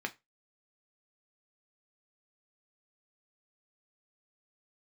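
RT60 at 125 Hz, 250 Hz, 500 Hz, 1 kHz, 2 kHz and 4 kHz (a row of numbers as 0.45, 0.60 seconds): 0.25, 0.20, 0.20, 0.20, 0.20, 0.20 seconds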